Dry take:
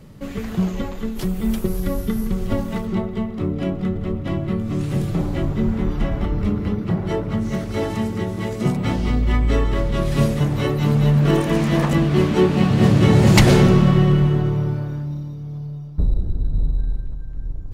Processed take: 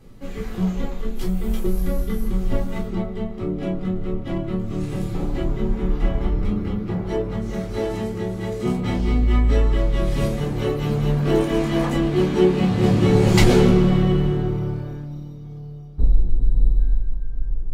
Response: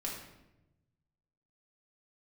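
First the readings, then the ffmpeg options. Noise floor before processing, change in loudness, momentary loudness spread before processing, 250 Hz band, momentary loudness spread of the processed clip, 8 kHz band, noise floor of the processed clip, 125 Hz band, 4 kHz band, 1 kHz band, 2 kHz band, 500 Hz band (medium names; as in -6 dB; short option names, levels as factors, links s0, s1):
-30 dBFS, -2.0 dB, 13 LU, -2.5 dB, 13 LU, -3.5 dB, -34 dBFS, -4.0 dB, -3.0 dB, -3.0 dB, -3.5 dB, 0.0 dB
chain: -filter_complex "[1:a]atrim=start_sample=2205,atrim=end_sample=3969,asetrate=74970,aresample=44100[s0];[0:a][s0]afir=irnorm=-1:irlink=0,volume=1.12"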